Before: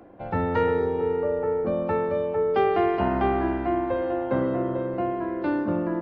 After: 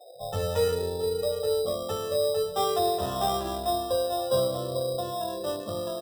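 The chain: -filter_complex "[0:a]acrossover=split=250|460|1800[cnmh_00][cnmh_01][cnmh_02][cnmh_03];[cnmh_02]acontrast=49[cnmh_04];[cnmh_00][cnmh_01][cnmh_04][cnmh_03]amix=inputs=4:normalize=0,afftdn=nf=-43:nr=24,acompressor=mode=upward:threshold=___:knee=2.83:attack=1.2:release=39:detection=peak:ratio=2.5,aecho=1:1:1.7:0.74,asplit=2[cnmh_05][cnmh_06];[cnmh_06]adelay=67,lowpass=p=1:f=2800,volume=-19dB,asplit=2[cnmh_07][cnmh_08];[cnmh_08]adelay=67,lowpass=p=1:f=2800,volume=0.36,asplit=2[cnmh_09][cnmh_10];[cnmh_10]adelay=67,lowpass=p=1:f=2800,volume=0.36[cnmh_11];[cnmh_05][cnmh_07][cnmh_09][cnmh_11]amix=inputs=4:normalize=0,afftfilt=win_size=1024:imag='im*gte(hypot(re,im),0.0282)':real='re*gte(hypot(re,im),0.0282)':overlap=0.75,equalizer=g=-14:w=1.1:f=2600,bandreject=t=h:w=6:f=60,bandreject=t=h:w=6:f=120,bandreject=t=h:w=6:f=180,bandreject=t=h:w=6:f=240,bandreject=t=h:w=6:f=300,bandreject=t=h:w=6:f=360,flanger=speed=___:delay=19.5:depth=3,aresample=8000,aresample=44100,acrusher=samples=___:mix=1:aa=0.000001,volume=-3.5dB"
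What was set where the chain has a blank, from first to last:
-33dB, 0.51, 10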